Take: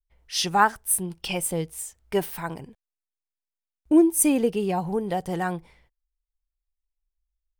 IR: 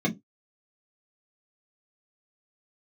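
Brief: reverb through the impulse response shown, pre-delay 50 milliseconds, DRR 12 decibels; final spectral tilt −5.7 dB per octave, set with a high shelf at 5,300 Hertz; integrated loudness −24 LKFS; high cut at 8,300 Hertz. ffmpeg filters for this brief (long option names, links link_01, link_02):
-filter_complex "[0:a]lowpass=8300,highshelf=frequency=5300:gain=-7,asplit=2[link_01][link_02];[1:a]atrim=start_sample=2205,adelay=50[link_03];[link_02][link_03]afir=irnorm=-1:irlink=0,volume=-22dB[link_04];[link_01][link_04]amix=inputs=2:normalize=0,volume=-1dB"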